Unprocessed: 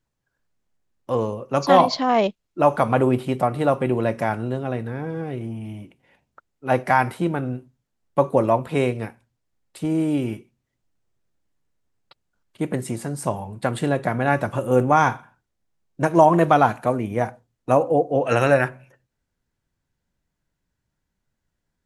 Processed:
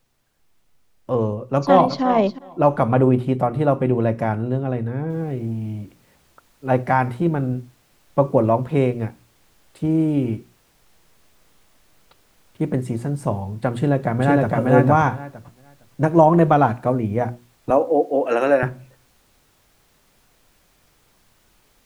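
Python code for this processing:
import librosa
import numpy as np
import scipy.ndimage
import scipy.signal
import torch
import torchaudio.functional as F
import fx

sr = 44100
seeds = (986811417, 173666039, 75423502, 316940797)

y = fx.echo_throw(x, sr, start_s=1.38, length_s=0.64, ms=360, feedback_pct=15, wet_db=-12.5)
y = fx.noise_floor_step(y, sr, seeds[0], at_s=5.1, before_db=-65, after_db=-54, tilt_db=0.0)
y = fx.echo_throw(y, sr, start_s=13.73, length_s=0.83, ms=460, feedback_pct=15, wet_db=0.0)
y = fx.highpass(y, sr, hz=260.0, slope=24, at=(17.7, 18.63))
y = fx.tilt_eq(y, sr, slope=-2.5)
y = fx.hum_notches(y, sr, base_hz=60, count=6)
y = y * 10.0 ** (-1.0 / 20.0)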